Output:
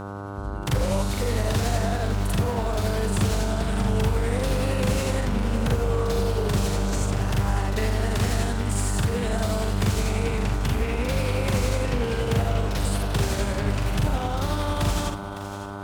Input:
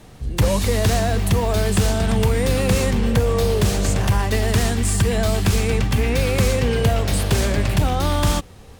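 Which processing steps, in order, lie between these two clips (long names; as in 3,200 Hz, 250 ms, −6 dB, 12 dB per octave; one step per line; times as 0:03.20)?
time stretch by overlap-add 1.8×, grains 185 ms
hum with harmonics 100 Hz, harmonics 15, −29 dBFS −3 dB per octave
echo with a time of its own for lows and highs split 460 Hz, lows 182 ms, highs 558 ms, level −13 dB
highs frequency-modulated by the lows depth 0.33 ms
level −5.5 dB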